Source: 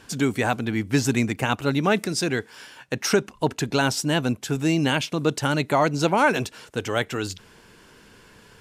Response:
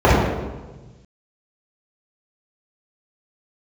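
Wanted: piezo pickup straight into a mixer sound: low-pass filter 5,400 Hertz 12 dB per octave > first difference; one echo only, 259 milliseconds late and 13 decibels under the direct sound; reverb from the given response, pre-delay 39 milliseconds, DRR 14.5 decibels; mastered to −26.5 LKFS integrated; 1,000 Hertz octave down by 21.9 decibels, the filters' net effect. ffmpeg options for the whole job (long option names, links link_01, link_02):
-filter_complex "[0:a]equalizer=frequency=1000:width_type=o:gain=-6.5,aecho=1:1:259:0.224,asplit=2[link_01][link_02];[1:a]atrim=start_sample=2205,adelay=39[link_03];[link_02][link_03]afir=irnorm=-1:irlink=0,volume=-43.5dB[link_04];[link_01][link_04]amix=inputs=2:normalize=0,lowpass=5400,aderivative,volume=12dB"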